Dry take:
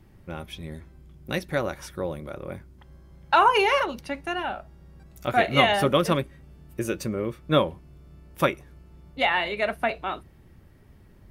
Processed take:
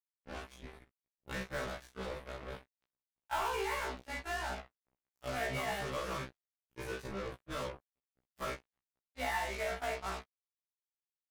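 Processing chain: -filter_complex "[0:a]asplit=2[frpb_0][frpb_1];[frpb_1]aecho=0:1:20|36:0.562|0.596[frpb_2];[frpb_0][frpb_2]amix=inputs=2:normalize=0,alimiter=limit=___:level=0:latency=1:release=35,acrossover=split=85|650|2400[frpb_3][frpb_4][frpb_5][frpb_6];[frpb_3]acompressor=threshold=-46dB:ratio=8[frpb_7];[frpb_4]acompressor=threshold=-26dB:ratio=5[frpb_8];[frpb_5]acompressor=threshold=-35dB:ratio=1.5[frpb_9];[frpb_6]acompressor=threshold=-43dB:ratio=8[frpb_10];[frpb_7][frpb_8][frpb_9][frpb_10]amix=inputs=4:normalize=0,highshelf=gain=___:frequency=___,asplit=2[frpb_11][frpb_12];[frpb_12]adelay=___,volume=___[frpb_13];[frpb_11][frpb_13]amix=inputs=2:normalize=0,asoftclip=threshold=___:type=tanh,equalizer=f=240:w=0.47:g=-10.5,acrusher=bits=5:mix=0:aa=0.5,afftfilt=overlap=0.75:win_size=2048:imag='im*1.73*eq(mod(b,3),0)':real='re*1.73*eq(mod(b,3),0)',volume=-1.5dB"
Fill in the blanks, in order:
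-11dB, -11, 3100, 47, -7dB, -21.5dB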